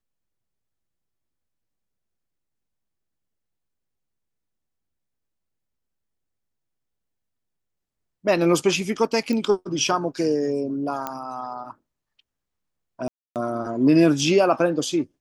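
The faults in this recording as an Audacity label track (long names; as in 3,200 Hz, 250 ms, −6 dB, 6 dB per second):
9.330000	9.330000	click −15 dBFS
11.070000	11.070000	click −13 dBFS
13.080000	13.360000	drop-out 278 ms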